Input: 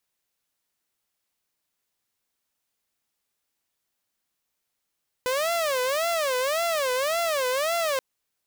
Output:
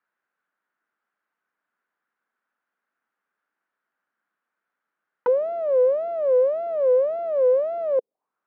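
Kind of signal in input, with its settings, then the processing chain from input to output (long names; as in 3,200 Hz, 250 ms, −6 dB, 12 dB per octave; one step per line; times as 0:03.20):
siren wail 501–684 Hz 1.8 per second saw −20.5 dBFS 2.73 s
high-pass filter 180 Hz 24 dB per octave
envelope-controlled low-pass 480–1,500 Hz down, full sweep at −26.5 dBFS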